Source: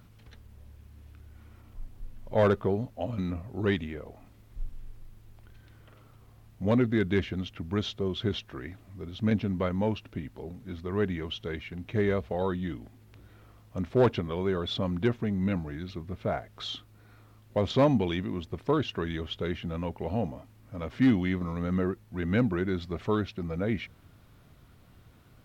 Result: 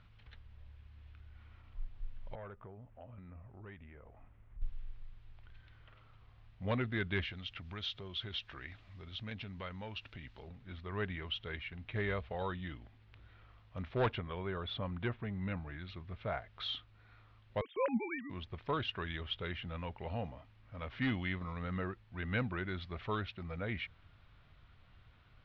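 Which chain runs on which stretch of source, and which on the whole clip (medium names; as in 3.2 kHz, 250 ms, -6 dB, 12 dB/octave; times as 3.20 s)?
2.35–4.62 s: compression 2.5:1, threshold -44 dBFS + Gaussian low-pass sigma 3.8 samples
7.25–10.48 s: treble shelf 3.4 kHz +12 dB + compression 2:1, threshold -37 dBFS
14.14–15.84 s: low-pass 2 kHz 6 dB/octave + tape noise reduction on one side only encoder only
17.61–18.30 s: formants replaced by sine waves + gate -38 dBFS, range -15 dB
whole clip: low-pass 3.7 kHz 24 dB/octave; peaking EQ 280 Hz -14 dB 2.8 oct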